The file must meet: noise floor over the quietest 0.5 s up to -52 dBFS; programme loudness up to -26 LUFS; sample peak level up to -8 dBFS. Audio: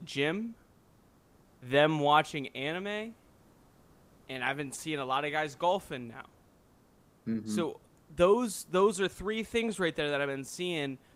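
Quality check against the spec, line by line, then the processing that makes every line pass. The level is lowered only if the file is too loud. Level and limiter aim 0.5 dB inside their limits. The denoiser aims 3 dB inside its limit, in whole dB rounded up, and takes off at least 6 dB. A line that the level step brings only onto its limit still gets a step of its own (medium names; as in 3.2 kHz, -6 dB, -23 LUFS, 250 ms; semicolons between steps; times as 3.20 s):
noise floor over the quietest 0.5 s -63 dBFS: pass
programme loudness -31.0 LUFS: pass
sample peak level -10.5 dBFS: pass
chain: none needed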